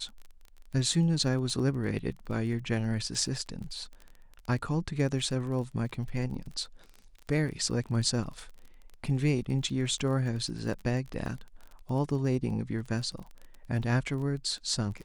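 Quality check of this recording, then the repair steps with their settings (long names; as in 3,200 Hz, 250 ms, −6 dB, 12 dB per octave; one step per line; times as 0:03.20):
surface crackle 25 per second −38 dBFS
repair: click removal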